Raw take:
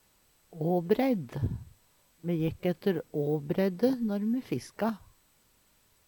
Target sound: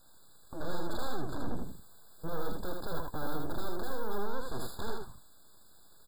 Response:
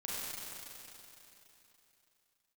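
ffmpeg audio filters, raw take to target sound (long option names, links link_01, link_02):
-filter_complex "[0:a]asettb=1/sr,asplit=3[link_01][link_02][link_03];[link_01]atrim=end=1.554[link_04];[link_02]atrim=start=1.55:end=4.23,asetpts=PTS-STARTPTS,afade=type=in:duration=0.004:curve=qsin,afade=type=out:start_time=2.676:duration=0.004:curve=qsin,equalizer=frequency=16000:width=2.5:gain=11[link_05];[link_03]atrim=start=4.226[link_06];[link_04][link_05]acrossfade=duration=0.004:curve1=hsin:curve2=qsin[link_07];[link_07][link_06]acrossfade=duration=0.004:curve1=qsin:curve2=hsin,aeval=exprs='(tanh(63.1*val(0)+0.1)-tanh(0.1))/63.1':channel_layout=same,aeval=exprs='abs(val(0))':channel_layout=same,aecho=1:1:79:0.668,afftfilt=real='re*eq(mod(floor(b*sr/1024/1700),2),0)':imag='im*eq(mod(floor(b*sr/1024/1700),2),0)':win_size=1024:overlap=0.75,volume=8.5dB"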